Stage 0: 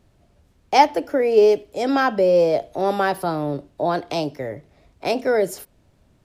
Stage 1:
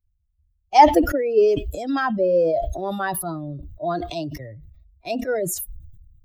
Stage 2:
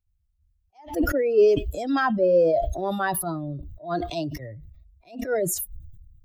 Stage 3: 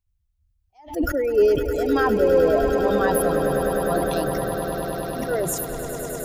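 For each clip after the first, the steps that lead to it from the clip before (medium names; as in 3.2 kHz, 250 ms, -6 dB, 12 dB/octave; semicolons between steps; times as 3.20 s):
expander on every frequency bin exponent 2; peaking EQ 800 Hz +5.5 dB 0.4 oct; decay stretcher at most 38 dB/s; trim -1.5 dB
attacks held to a fixed rise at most 170 dB/s
echo with a slow build-up 102 ms, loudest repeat 8, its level -11.5 dB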